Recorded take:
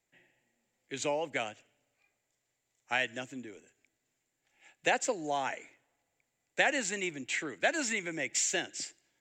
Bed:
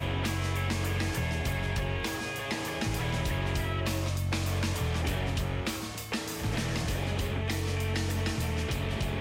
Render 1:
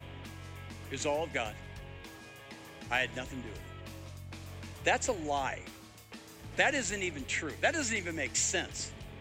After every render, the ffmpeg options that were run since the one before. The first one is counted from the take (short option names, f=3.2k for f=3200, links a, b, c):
-filter_complex "[1:a]volume=-15.5dB[a];[0:a][a]amix=inputs=2:normalize=0"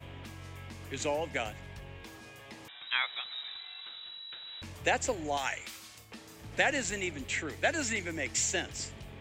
-filter_complex "[0:a]asettb=1/sr,asplit=3[a][b][c];[a]atrim=end=2.684[d];[b]atrim=start=2.68:end=4.62,asetpts=PTS-STARTPTS,afade=t=in:d=0.004:c=qsin,afade=t=out:st=1.936:d=0.004:c=qsin,lowpass=f=3.4k:t=q:w=0.5098,lowpass=f=3.4k:t=q:w=0.6013,lowpass=f=3.4k:t=q:w=0.9,lowpass=f=3.4k:t=q:w=2.563,afreqshift=-4000[e];[c]atrim=start=4.616[f];[d][e]acrossfade=d=0.004:c1=hsin:c2=qsin[g];[g][f]acrossfade=d=0.004:c1=qsin:c2=hsin,asettb=1/sr,asplit=3[h][i][j];[h]atrim=end=5.374[k];[i]atrim=start=5.37:end=5.98,asetpts=PTS-STARTPTS,afade=t=in:d=0.004:c=qsin,afade=t=out:st=0.606:d=0.004:c=qsin,tiltshelf=f=1.1k:g=-8.5[l];[j]atrim=start=5.976[m];[k][l]acrossfade=d=0.004:c1=hsin:c2=qsin[n];[n][m]acrossfade=d=0.004:c1=qsin:c2=hsin"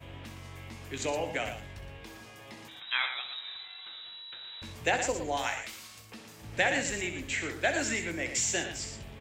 -filter_complex "[0:a]asplit=2[a][b];[b]adelay=18,volume=-11dB[c];[a][c]amix=inputs=2:normalize=0,aecho=1:1:64.14|116.6:0.316|0.355"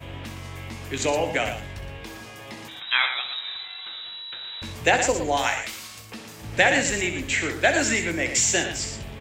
-af "volume=8.5dB"